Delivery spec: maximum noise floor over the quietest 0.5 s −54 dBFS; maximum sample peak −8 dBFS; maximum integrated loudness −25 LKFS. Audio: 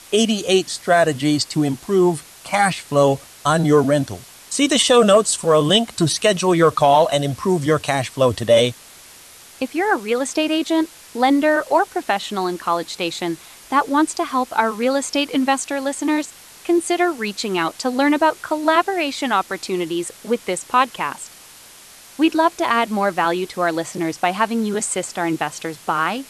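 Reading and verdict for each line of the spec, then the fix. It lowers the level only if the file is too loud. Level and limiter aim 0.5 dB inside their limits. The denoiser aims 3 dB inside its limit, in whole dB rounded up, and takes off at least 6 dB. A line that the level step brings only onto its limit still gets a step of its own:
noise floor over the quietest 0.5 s −44 dBFS: out of spec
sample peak −4.0 dBFS: out of spec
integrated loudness −19.0 LKFS: out of spec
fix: broadband denoise 7 dB, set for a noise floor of −44 dBFS
level −6.5 dB

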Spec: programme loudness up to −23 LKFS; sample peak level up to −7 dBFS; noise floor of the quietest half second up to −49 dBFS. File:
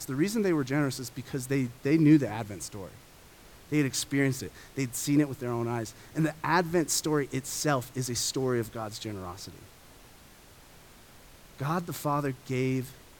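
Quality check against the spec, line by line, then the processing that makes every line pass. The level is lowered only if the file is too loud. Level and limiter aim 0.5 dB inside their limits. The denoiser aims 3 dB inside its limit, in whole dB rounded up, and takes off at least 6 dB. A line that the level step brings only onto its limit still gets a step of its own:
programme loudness −29.5 LKFS: in spec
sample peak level −10.5 dBFS: in spec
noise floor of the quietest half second −54 dBFS: in spec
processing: no processing needed

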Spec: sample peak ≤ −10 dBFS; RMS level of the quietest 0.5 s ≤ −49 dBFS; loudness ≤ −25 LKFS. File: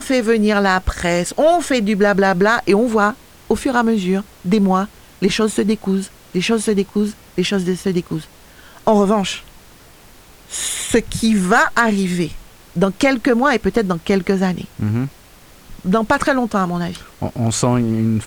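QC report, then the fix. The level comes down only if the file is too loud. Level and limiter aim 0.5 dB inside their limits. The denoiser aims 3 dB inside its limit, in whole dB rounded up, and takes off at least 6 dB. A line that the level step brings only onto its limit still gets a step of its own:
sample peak −3.0 dBFS: out of spec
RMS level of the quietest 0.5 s −44 dBFS: out of spec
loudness −17.5 LKFS: out of spec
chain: level −8 dB

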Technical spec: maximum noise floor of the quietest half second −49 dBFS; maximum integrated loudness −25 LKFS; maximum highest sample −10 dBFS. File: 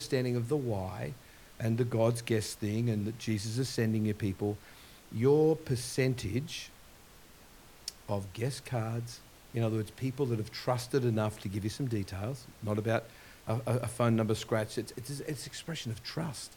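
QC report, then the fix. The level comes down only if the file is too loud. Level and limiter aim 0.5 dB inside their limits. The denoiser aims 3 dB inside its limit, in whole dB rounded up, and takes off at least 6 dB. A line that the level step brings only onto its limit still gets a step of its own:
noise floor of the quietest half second −55 dBFS: in spec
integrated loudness −33.5 LKFS: in spec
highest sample −14.5 dBFS: in spec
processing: no processing needed

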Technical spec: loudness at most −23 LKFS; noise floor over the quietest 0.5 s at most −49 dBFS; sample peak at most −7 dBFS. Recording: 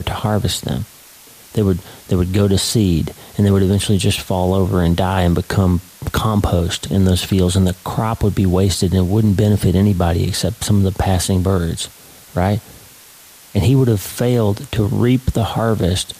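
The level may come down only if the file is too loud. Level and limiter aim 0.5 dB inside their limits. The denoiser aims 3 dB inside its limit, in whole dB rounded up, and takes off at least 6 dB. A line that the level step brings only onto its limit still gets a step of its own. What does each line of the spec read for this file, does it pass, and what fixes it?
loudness −17.0 LKFS: out of spec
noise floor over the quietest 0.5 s −43 dBFS: out of spec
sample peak −5.0 dBFS: out of spec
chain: level −6.5 dB

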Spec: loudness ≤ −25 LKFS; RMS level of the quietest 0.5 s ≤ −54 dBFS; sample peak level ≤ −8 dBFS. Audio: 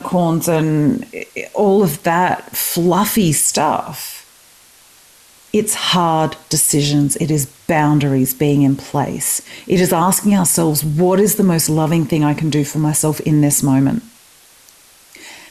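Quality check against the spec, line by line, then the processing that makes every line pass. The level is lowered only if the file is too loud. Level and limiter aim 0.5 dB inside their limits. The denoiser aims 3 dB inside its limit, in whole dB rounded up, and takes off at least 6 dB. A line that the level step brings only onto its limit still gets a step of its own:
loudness −15.0 LKFS: out of spec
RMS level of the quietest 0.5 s −47 dBFS: out of spec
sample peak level −5.0 dBFS: out of spec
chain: level −10.5 dB

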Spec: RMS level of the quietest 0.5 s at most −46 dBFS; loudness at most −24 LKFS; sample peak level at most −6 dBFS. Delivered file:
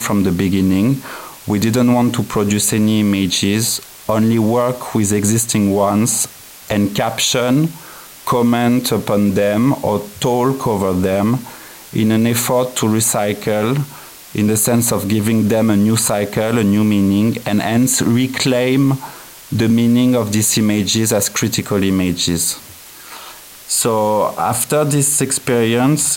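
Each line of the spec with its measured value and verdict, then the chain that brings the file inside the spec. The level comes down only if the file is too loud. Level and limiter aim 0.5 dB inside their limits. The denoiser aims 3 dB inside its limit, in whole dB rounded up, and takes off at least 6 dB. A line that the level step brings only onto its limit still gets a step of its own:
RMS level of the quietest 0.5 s −37 dBFS: out of spec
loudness −15.5 LKFS: out of spec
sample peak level −5.0 dBFS: out of spec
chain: broadband denoise 6 dB, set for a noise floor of −37 dBFS
level −9 dB

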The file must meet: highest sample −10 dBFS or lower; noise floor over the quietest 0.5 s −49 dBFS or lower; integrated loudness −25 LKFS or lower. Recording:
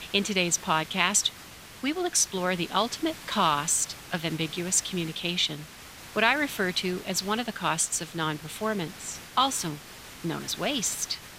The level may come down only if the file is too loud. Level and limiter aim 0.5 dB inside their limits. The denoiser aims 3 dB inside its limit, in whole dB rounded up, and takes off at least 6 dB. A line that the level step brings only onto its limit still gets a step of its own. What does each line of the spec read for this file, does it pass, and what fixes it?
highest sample −6.5 dBFS: out of spec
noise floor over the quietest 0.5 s −46 dBFS: out of spec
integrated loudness −27.0 LKFS: in spec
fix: broadband denoise 6 dB, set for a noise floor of −46 dBFS
brickwall limiter −10.5 dBFS

